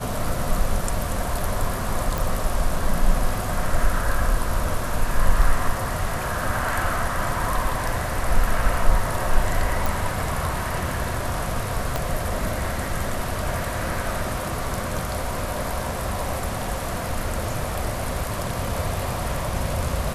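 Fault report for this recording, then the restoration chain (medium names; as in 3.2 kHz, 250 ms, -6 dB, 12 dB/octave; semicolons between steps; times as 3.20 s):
2.18 s: pop
9.86 s: pop
11.96 s: pop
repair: de-click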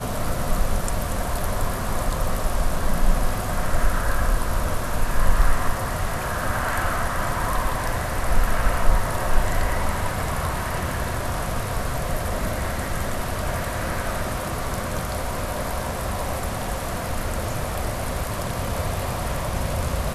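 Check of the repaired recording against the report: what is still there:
11.96 s: pop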